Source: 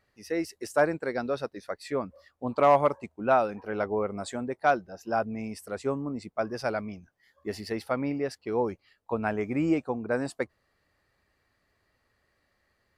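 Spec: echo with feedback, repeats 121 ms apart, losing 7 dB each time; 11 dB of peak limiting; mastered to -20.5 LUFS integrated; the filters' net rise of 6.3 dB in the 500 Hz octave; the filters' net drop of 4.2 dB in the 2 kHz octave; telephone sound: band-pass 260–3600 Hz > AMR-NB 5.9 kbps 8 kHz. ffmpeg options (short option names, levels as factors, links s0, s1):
-af "equalizer=f=500:t=o:g=8.5,equalizer=f=2000:t=o:g=-7,alimiter=limit=0.141:level=0:latency=1,highpass=260,lowpass=3600,aecho=1:1:121|242|363|484|605:0.447|0.201|0.0905|0.0407|0.0183,volume=2.82" -ar 8000 -c:a libopencore_amrnb -b:a 5900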